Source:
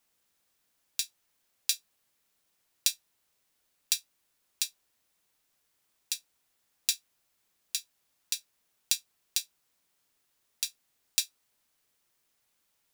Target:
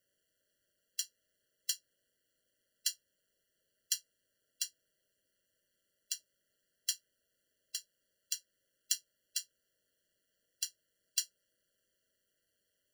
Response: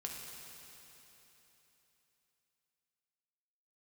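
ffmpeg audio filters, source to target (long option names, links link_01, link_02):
-af "equalizer=frequency=630:width_type=o:width=0.67:gain=9,equalizer=frequency=2500:width_type=o:width=0.67:gain=3,equalizer=frequency=16000:width_type=o:width=0.67:gain=-3,aeval=exprs='val(0)*sin(2*PI*95*n/s)':channel_layout=same,afftfilt=real='re*eq(mod(floor(b*sr/1024/680),2),0)':imag='im*eq(mod(floor(b*sr/1024/680),2),0)':win_size=1024:overlap=0.75"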